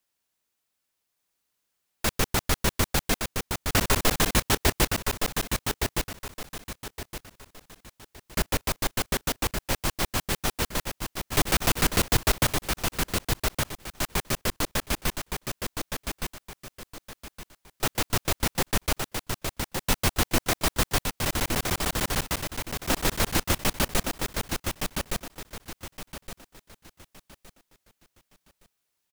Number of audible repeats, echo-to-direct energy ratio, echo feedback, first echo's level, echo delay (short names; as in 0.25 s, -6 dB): 3, -4.5 dB, 30%, -5.0 dB, 1.166 s